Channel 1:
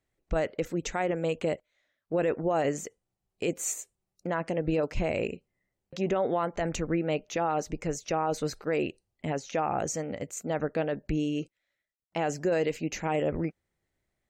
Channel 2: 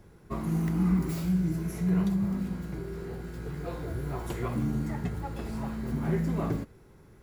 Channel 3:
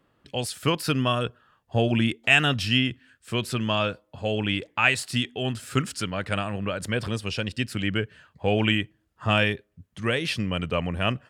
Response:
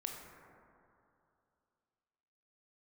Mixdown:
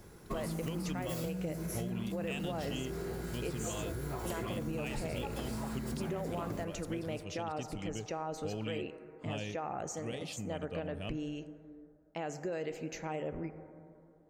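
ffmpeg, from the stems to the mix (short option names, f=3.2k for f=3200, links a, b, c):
-filter_complex "[0:a]volume=-11.5dB,asplit=2[a][b];[b]volume=-4dB[c];[1:a]bass=f=250:g=-4,treble=f=4k:g=7,acompressor=threshold=-36dB:ratio=6,volume=2.5dB[d];[2:a]equalizer=f=1.5k:t=o:w=1.2:g=-14.5,volume=-13.5dB[e];[3:a]atrim=start_sample=2205[f];[c][f]afir=irnorm=-1:irlink=0[g];[a][d][e][g]amix=inputs=4:normalize=0,acompressor=threshold=-33dB:ratio=6"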